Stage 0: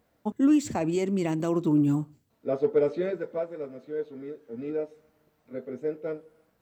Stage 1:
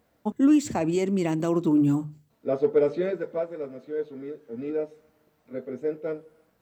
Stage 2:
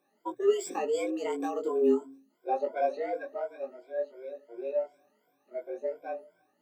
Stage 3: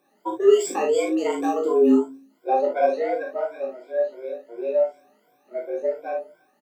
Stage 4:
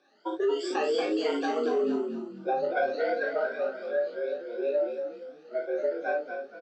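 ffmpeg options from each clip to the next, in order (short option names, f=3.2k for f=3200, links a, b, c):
-af "bandreject=f=50:t=h:w=6,bandreject=f=100:t=h:w=6,bandreject=f=150:t=h:w=6,volume=2dB"
-af "afftfilt=real='re*pow(10,22/40*sin(2*PI*(1.6*log(max(b,1)*sr/1024/100)/log(2)-(2.8)*(pts-256)/sr)))':imag='im*pow(10,22/40*sin(2*PI*(1.6*log(max(b,1)*sr/1024/100)/log(2)-(2.8)*(pts-256)/sr)))':win_size=1024:overlap=0.75,flanger=delay=19:depth=2.3:speed=0.72,afreqshift=120,volume=-7.5dB"
-af "aecho=1:1:38|53:0.501|0.447,volume=7dB"
-filter_complex "[0:a]acompressor=threshold=-24dB:ratio=6,highpass=280,equalizer=f=1k:t=q:w=4:g=-7,equalizer=f=1.5k:t=q:w=4:g=10,equalizer=f=2.2k:t=q:w=4:g=-3,equalizer=f=3.2k:t=q:w=4:g=6,equalizer=f=4.6k:t=q:w=4:g=10,lowpass=f=5.9k:w=0.5412,lowpass=f=5.9k:w=1.3066,asplit=5[a][b][c][d][e];[b]adelay=233,afreqshift=-35,volume=-7dB[f];[c]adelay=466,afreqshift=-70,volume=-16.1dB[g];[d]adelay=699,afreqshift=-105,volume=-25.2dB[h];[e]adelay=932,afreqshift=-140,volume=-34.4dB[i];[a][f][g][h][i]amix=inputs=5:normalize=0"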